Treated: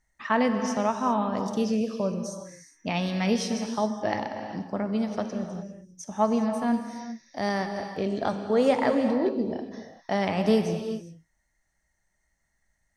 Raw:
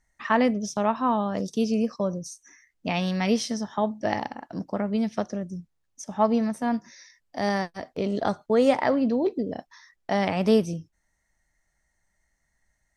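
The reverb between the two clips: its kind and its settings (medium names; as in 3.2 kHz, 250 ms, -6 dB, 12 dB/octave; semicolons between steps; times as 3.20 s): gated-style reverb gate 430 ms flat, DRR 6 dB; trim -2 dB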